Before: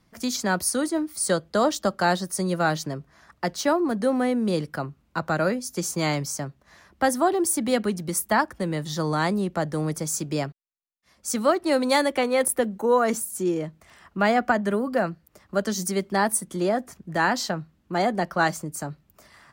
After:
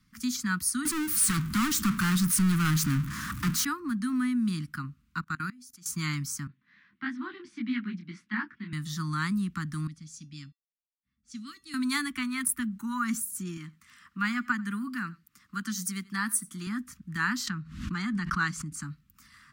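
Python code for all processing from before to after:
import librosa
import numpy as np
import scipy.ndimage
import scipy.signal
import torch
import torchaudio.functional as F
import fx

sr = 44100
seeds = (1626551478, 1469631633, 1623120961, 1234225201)

y = fx.chain(x, sr, fx.highpass(hz=89.0, slope=12),
    fx.peak_eq(hz=2700.0, db=-9.5, octaves=2.9),
    fx.power_curve(exponent=0.35), at=(0.85, 3.65))
y = fx.chain(y, sr, fx.low_shelf(hz=150.0, db=-3.5),
    fx.level_steps(step_db=24), at=(5.21, 5.86))
y = fx.chain(y, sr, fx.cabinet(low_hz=130.0, low_slope=24, high_hz=3500.0, hz=(150.0, 400.0, 1200.0, 2100.0), db=(-4, 7, -7, 4)),
    fx.detune_double(cents=56), at=(6.47, 8.73))
y = fx.chain(y, sr, fx.comb_fb(f0_hz=390.0, decay_s=0.22, harmonics='odd', damping=0.0, mix_pct=70),
    fx.env_lowpass(base_hz=1200.0, full_db=-28.0),
    fx.curve_eq(hz=(290.0, 450.0, 3300.0), db=(0, -25, 2)), at=(9.87, 11.74))
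y = fx.chain(y, sr, fx.highpass(hz=230.0, slope=6),
    fx.echo_single(ms=90, db=-23.0), at=(13.57, 16.67))
y = fx.chain(y, sr, fx.lowpass(hz=7900.0, slope=12),
    fx.pre_swell(db_per_s=75.0), at=(17.47, 18.83))
y = scipy.signal.sosfilt(scipy.signal.cheby1(3, 1.0, [260.0, 1200.0], 'bandstop', fs=sr, output='sos'), y)
y = fx.dynamic_eq(y, sr, hz=4300.0, q=0.85, threshold_db=-44.0, ratio=4.0, max_db=-4)
y = y * 10.0 ** (-2.0 / 20.0)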